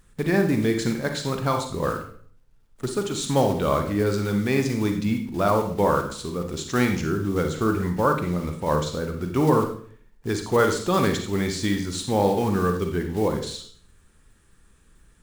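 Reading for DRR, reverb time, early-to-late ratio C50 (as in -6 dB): 4.5 dB, 0.50 s, 7.0 dB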